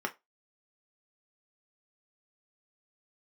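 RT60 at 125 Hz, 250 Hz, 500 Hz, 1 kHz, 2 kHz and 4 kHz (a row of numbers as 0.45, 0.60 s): 0.15, 0.20, 0.20, 0.20, 0.20, 0.15 s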